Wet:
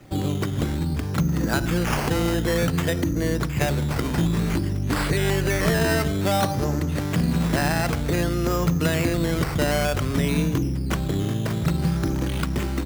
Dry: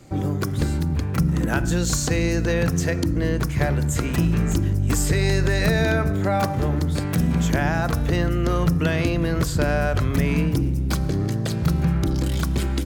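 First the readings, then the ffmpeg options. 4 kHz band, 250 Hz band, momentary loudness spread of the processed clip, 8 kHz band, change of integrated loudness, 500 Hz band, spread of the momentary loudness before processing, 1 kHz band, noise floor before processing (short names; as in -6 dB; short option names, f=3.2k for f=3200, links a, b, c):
+1.5 dB, -0.5 dB, 4 LU, -3.0 dB, -1.5 dB, 0.0 dB, 3 LU, +0.5 dB, -25 dBFS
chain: -filter_complex "[0:a]acrossover=split=140|3000[a][b][c];[a]acompressor=threshold=-28dB:ratio=3[d];[d][b][c]amix=inputs=3:normalize=0,acrusher=samples=10:mix=1:aa=0.000001:lfo=1:lforange=6:lforate=0.55"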